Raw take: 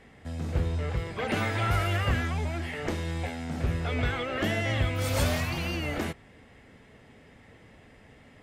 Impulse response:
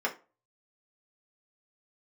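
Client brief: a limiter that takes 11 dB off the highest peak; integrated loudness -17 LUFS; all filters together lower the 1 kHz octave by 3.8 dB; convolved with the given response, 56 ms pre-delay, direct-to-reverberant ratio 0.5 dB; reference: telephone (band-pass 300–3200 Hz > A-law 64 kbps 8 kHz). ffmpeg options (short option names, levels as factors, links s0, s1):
-filter_complex "[0:a]equalizer=f=1000:t=o:g=-5.5,alimiter=level_in=1.06:limit=0.0631:level=0:latency=1,volume=0.944,asplit=2[s0][s1];[1:a]atrim=start_sample=2205,adelay=56[s2];[s1][s2]afir=irnorm=-1:irlink=0,volume=0.355[s3];[s0][s3]amix=inputs=2:normalize=0,highpass=300,lowpass=3200,volume=8.41" -ar 8000 -c:a pcm_alaw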